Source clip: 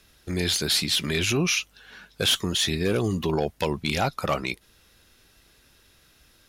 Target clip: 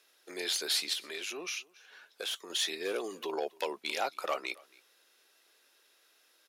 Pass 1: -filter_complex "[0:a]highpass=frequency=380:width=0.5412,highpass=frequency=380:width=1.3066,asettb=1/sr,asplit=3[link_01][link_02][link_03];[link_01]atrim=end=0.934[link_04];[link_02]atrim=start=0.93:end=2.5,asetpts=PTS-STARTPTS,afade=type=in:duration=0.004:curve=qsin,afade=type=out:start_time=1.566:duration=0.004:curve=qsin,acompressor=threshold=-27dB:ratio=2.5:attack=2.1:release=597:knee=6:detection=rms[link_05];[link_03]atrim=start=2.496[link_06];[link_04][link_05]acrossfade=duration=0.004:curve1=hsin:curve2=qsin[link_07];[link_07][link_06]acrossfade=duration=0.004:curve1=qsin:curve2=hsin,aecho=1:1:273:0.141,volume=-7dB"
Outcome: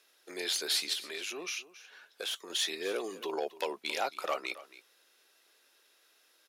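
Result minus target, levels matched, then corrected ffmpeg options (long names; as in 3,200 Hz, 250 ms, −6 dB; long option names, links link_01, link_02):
echo-to-direct +7.5 dB
-filter_complex "[0:a]highpass=frequency=380:width=0.5412,highpass=frequency=380:width=1.3066,asettb=1/sr,asplit=3[link_01][link_02][link_03];[link_01]atrim=end=0.934[link_04];[link_02]atrim=start=0.93:end=2.5,asetpts=PTS-STARTPTS,afade=type=in:duration=0.004:curve=qsin,afade=type=out:start_time=1.566:duration=0.004:curve=qsin,acompressor=threshold=-27dB:ratio=2.5:attack=2.1:release=597:knee=6:detection=rms[link_05];[link_03]atrim=start=2.496[link_06];[link_04][link_05]acrossfade=duration=0.004:curve1=hsin:curve2=qsin[link_07];[link_07][link_06]acrossfade=duration=0.004:curve1=qsin:curve2=hsin,aecho=1:1:273:0.0596,volume=-7dB"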